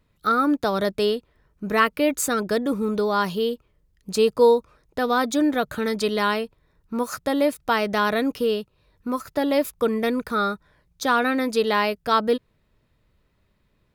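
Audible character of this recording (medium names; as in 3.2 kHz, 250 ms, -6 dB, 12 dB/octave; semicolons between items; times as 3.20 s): noise floor -67 dBFS; spectral tilt -3.0 dB/octave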